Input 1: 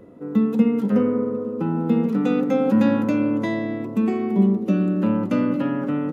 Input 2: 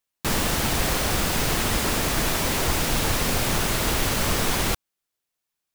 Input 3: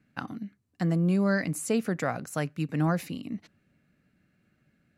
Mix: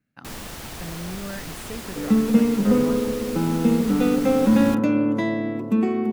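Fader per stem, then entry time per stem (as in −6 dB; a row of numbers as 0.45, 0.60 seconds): +0.5, −12.5, −9.5 decibels; 1.75, 0.00, 0.00 seconds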